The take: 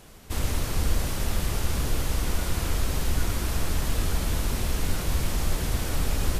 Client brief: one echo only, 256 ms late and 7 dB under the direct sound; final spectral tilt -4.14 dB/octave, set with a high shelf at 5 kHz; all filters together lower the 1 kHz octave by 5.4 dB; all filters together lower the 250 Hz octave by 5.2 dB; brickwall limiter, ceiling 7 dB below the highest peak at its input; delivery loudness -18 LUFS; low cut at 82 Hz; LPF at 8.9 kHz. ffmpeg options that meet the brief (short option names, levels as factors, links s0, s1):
-af "highpass=82,lowpass=8900,equalizer=f=250:t=o:g=-7,equalizer=f=1000:t=o:g=-6.5,highshelf=f=5000:g=-5,alimiter=level_in=1.33:limit=0.0631:level=0:latency=1,volume=0.75,aecho=1:1:256:0.447,volume=7.08"